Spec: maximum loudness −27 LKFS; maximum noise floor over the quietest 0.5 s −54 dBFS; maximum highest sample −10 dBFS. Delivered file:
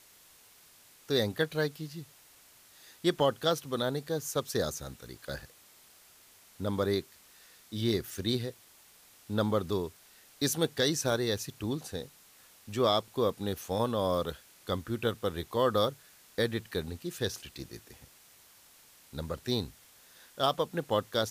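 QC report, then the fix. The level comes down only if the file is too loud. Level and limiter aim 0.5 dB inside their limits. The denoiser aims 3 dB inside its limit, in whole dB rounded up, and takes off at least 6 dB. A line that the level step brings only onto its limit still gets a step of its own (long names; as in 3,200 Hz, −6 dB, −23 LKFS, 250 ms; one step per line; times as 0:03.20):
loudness −32.0 LKFS: in spec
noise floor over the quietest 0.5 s −59 dBFS: in spec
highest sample −14.5 dBFS: in spec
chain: no processing needed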